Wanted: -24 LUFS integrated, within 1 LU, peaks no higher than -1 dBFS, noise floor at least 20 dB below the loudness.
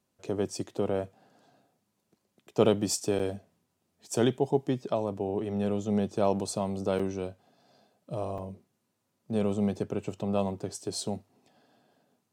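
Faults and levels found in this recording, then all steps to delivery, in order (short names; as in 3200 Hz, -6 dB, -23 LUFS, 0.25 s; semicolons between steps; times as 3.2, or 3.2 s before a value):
dropouts 3; longest dropout 5.1 ms; loudness -30.5 LUFS; peak -9.5 dBFS; loudness target -24.0 LUFS
-> interpolate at 3.19/6.99/8.38, 5.1 ms; gain +6.5 dB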